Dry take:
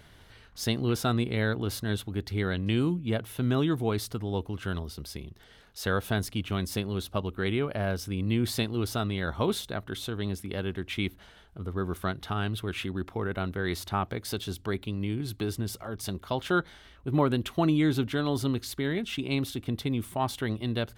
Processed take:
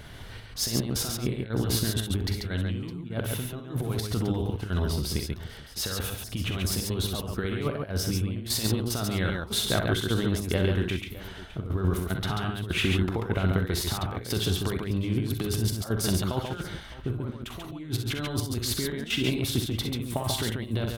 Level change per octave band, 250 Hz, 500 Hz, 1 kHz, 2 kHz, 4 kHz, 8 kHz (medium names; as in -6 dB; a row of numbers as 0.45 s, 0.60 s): -0.5 dB, -0.5 dB, -3.0 dB, +0.5 dB, +5.5 dB, +8.5 dB